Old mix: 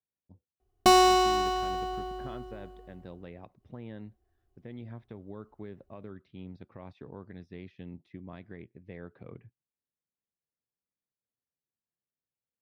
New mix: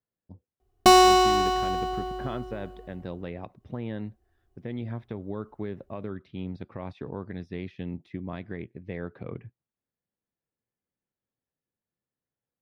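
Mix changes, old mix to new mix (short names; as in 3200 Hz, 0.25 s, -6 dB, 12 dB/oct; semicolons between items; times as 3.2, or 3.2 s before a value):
speech +9.0 dB; background +4.0 dB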